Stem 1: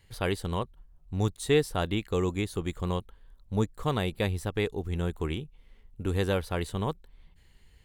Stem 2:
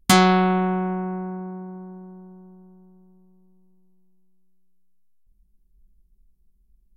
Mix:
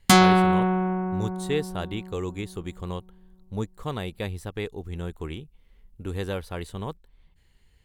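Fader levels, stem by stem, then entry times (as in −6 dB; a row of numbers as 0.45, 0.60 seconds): −3.0, −0.5 decibels; 0.00, 0.00 seconds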